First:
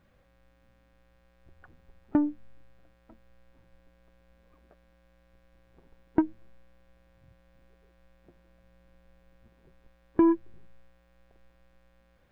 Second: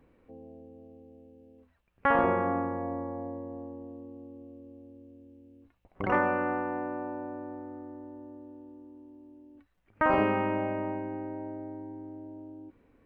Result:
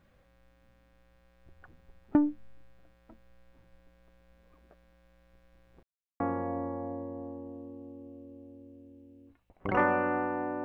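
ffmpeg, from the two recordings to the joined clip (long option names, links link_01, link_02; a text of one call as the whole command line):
ffmpeg -i cue0.wav -i cue1.wav -filter_complex "[0:a]apad=whole_dur=10.64,atrim=end=10.64,asplit=2[link_01][link_02];[link_01]atrim=end=5.83,asetpts=PTS-STARTPTS,afade=type=out:start_time=5.826:duration=0.004:curve=hsin[link_03];[link_02]atrim=start=5.83:end=6.2,asetpts=PTS-STARTPTS,volume=0[link_04];[1:a]atrim=start=2.55:end=6.99,asetpts=PTS-STARTPTS,afade=type=in:duration=0.004:curve=hsin[link_05];[link_03][link_04][link_05]concat=n=3:v=0:a=1" out.wav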